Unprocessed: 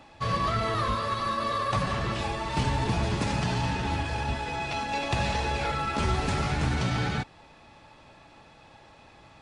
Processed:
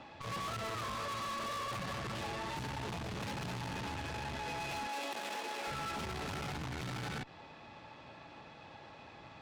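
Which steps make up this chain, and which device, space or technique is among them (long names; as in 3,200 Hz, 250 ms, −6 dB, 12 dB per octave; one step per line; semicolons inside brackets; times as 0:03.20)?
valve radio (band-pass filter 87–4,900 Hz; tube saturation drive 40 dB, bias 0.5; saturating transformer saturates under 130 Hz)
0:04.87–0:05.67: high-pass filter 260 Hz 24 dB per octave
level +2.5 dB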